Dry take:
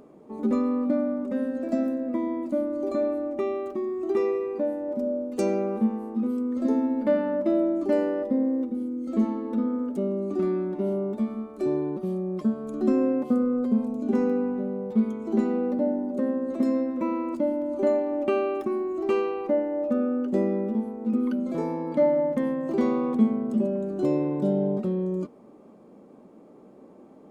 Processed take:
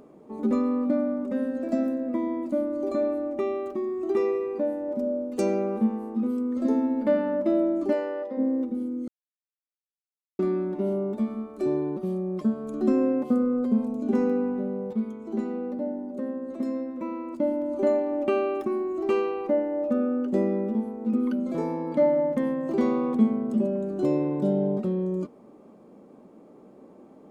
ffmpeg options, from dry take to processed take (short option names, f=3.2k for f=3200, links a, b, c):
-filter_complex "[0:a]asplit=3[a][b][c];[a]afade=t=out:st=7.92:d=0.02[d];[b]highpass=530,lowpass=5.7k,afade=t=in:st=7.92:d=0.02,afade=t=out:st=8.37:d=0.02[e];[c]afade=t=in:st=8.37:d=0.02[f];[d][e][f]amix=inputs=3:normalize=0,asplit=5[g][h][i][j][k];[g]atrim=end=9.08,asetpts=PTS-STARTPTS,afade=t=out:st=9.076:d=0.004:c=hsin[l];[h]atrim=start=9.08:end=10.39,asetpts=PTS-STARTPTS,volume=0[m];[i]atrim=start=10.39:end=14.932,asetpts=PTS-STARTPTS,afade=t=in:d=0.004:c=hsin[n];[j]atrim=start=14.928:end=17.402,asetpts=PTS-STARTPTS,volume=-5.5dB[o];[k]atrim=start=17.398[p];[l][m][n]concat=n=3:v=0:a=1[q];[q][o]acrossfade=d=0.004:c1=hsin:c2=hsin[r];[r][p]acrossfade=d=0.004:c1=hsin:c2=hsin"